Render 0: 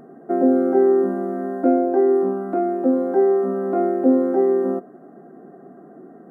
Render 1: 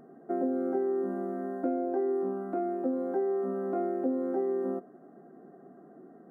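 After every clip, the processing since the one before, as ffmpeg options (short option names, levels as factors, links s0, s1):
-af "acompressor=threshold=0.141:ratio=6,volume=0.355"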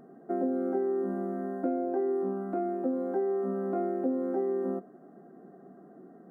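-af "equalizer=f=190:t=o:w=0.22:g=5"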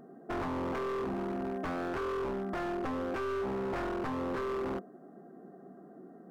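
-af "aeval=exprs='0.0335*(abs(mod(val(0)/0.0335+3,4)-2)-1)':c=same"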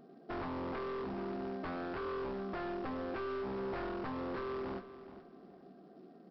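-af "aresample=11025,acrusher=bits=6:mode=log:mix=0:aa=0.000001,aresample=44100,aecho=1:1:423|846|1269:0.2|0.0499|0.0125,volume=0.562"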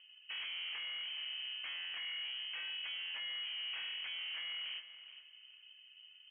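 -af "volume=63.1,asoftclip=hard,volume=0.0158,lowpass=f=2800:t=q:w=0.5098,lowpass=f=2800:t=q:w=0.6013,lowpass=f=2800:t=q:w=0.9,lowpass=f=2800:t=q:w=2.563,afreqshift=-3300,volume=0.708"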